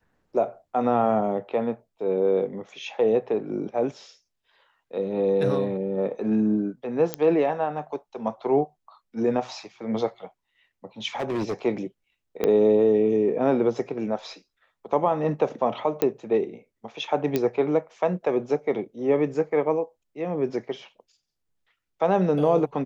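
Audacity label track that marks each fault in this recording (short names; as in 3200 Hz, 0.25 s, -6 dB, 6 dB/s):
7.140000	7.140000	pop -10 dBFS
11.150000	11.540000	clipped -23 dBFS
12.440000	12.440000	pop -11 dBFS
16.020000	16.020000	pop -9 dBFS
17.360000	17.360000	pop -10 dBFS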